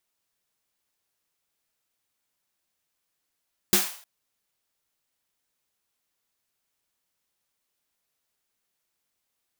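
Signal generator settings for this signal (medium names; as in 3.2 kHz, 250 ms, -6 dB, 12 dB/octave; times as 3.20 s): snare drum length 0.31 s, tones 200 Hz, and 360 Hz, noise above 630 Hz, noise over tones 4.5 dB, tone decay 0.20 s, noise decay 0.48 s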